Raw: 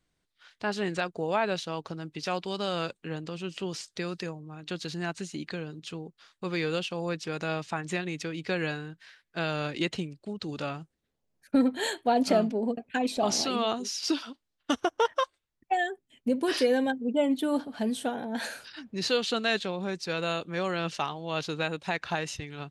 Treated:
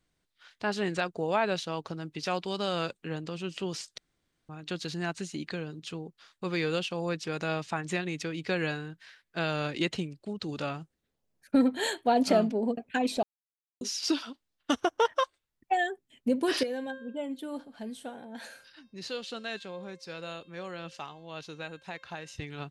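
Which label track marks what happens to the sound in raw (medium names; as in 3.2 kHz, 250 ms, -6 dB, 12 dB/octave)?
3.980000	4.490000	room tone
13.230000	13.810000	mute
16.630000	22.380000	feedback comb 530 Hz, decay 0.64 s, mix 70%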